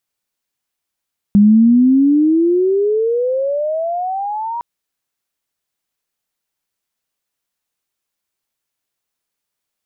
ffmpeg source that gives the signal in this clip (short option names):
-f lavfi -i "aevalsrc='pow(10,(-5-15*t/3.26)/20)*sin(2*PI*200*3.26/log(960/200)*(exp(log(960/200)*t/3.26)-1))':d=3.26:s=44100"